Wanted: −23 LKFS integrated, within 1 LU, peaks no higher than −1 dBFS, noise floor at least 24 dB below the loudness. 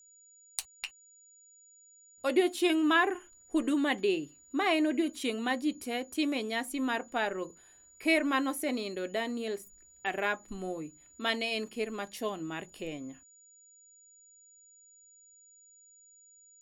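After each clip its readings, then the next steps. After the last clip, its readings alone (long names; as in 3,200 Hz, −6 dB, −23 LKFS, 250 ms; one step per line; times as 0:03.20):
interfering tone 6,900 Hz; level of the tone −57 dBFS; integrated loudness −32.0 LKFS; sample peak −12.5 dBFS; target loudness −23.0 LKFS
→ notch filter 6,900 Hz, Q 30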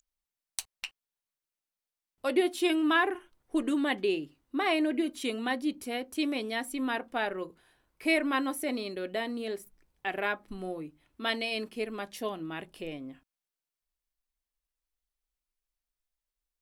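interfering tone none found; integrated loudness −31.5 LKFS; sample peak −12.0 dBFS; target loudness −23.0 LKFS
→ level +8.5 dB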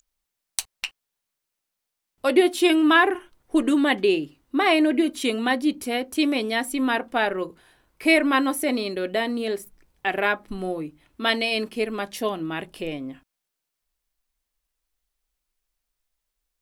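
integrated loudness −23.0 LKFS; sample peak −3.5 dBFS; background noise floor −83 dBFS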